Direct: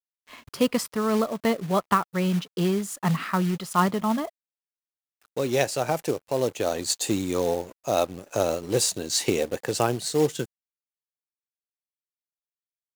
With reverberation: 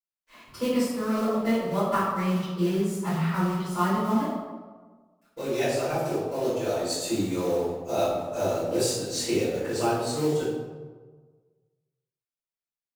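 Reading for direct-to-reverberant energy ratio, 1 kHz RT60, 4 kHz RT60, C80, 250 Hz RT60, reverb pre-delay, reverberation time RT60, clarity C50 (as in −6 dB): −14.5 dB, 1.3 s, 0.75 s, 2.5 dB, 1.4 s, 3 ms, 1.4 s, 0.0 dB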